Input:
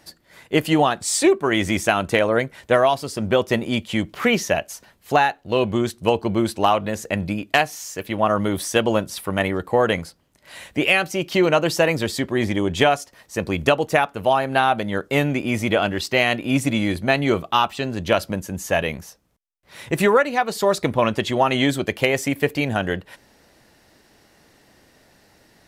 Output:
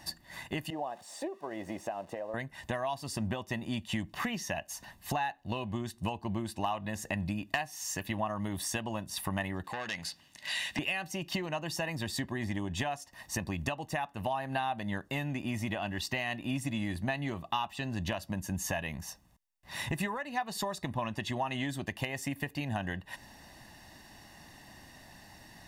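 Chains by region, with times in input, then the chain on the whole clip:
0:00.70–0:02.34: spike at every zero crossing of −14.5 dBFS + resonant band-pass 530 Hz, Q 2.6
0:09.64–0:10.79: meter weighting curve D + downward compressor 1.5 to 1, threshold −34 dBFS + saturating transformer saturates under 2,400 Hz
whole clip: downward compressor 6 to 1, threshold −33 dBFS; comb filter 1.1 ms, depth 68%

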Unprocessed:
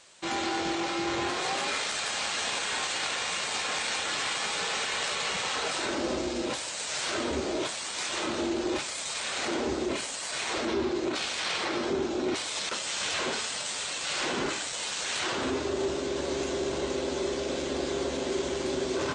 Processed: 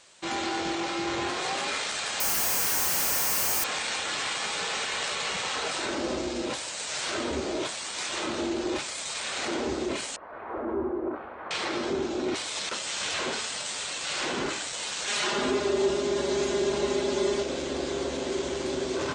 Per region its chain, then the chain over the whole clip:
0:02.20–0:03.64: high-shelf EQ 4,600 Hz −6 dB + comparator with hysteresis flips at −39 dBFS + bad sample-rate conversion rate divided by 6×, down filtered, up zero stuff
0:10.16–0:11.51: low-pass filter 1,300 Hz 24 dB per octave + parametric band 150 Hz −12 dB 0.58 octaves
0:15.07–0:17.43: high-pass filter 44 Hz + comb filter 4.9 ms, depth 100%
whole clip: no processing

